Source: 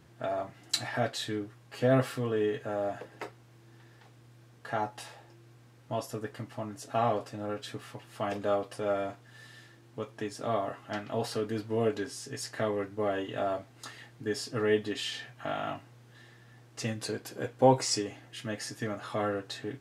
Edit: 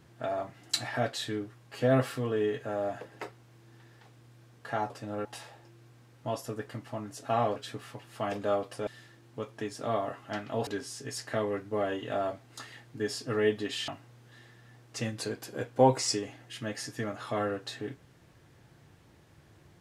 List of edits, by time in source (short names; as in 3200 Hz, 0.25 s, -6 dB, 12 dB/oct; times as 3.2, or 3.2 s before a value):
7.21–7.56 move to 4.9
8.87–9.47 cut
11.27–11.93 cut
15.14–15.71 cut